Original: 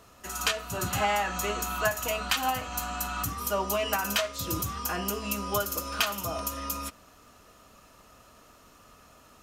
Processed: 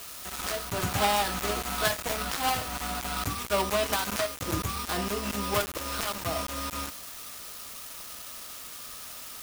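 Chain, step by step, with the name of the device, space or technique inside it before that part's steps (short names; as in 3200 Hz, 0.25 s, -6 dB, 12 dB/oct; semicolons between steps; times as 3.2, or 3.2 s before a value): 1.31–3.5 doubler 21 ms -9 dB; budget class-D amplifier (switching dead time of 0.21 ms; switching spikes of -28 dBFS); gain +3 dB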